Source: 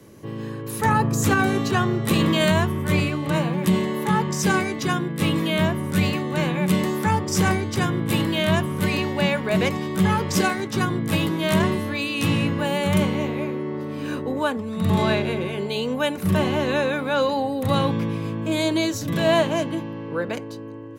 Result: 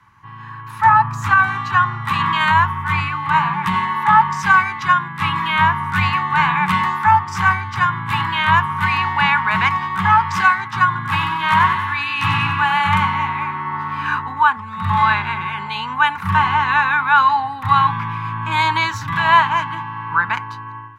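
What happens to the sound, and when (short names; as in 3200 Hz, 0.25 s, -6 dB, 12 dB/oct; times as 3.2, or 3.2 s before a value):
10.86–12.95 thinning echo 94 ms, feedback 60%, level -8 dB
whole clip: EQ curve 110 Hz 0 dB, 560 Hz -29 dB, 910 Hz +11 dB, 10000 Hz -15 dB; AGC; bell 1500 Hz +5 dB 2 oct; gain -4.5 dB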